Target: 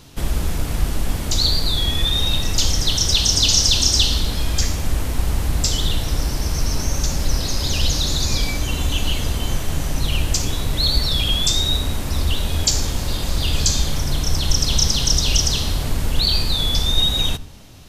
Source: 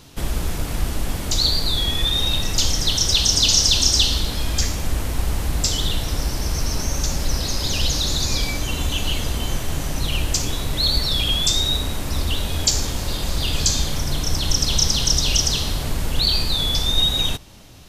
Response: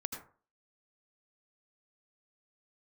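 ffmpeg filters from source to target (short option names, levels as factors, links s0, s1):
-filter_complex "[0:a]asplit=2[s0][s1];[1:a]atrim=start_sample=2205,lowshelf=f=260:g=11[s2];[s1][s2]afir=irnorm=-1:irlink=0,volume=0.178[s3];[s0][s3]amix=inputs=2:normalize=0,volume=0.891"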